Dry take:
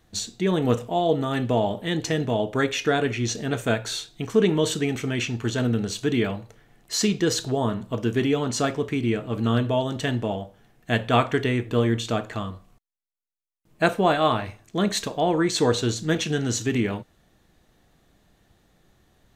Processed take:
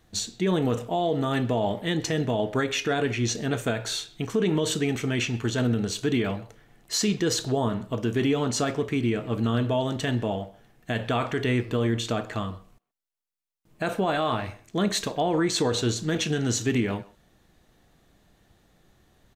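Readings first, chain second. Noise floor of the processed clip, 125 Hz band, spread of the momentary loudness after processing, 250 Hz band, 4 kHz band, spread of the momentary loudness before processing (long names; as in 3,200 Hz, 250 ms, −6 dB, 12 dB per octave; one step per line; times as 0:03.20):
−63 dBFS, −1.5 dB, 7 LU, −1.5 dB, −1.0 dB, 7 LU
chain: brickwall limiter −15.5 dBFS, peak gain reduction 10 dB
far-end echo of a speakerphone 130 ms, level −19 dB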